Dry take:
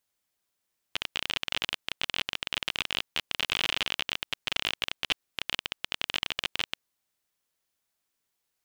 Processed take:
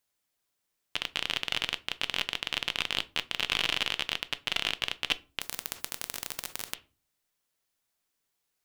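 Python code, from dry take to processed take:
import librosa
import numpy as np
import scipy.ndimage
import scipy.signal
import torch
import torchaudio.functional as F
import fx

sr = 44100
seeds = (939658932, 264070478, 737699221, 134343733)

y = fx.room_shoebox(x, sr, seeds[0], volume_m3=170.0, walls='furnished', distance_m=0.35)
y = fx.spectral_comp(y, sr, ratio=10.0, at=(5.4, 6.73), fade=0.02)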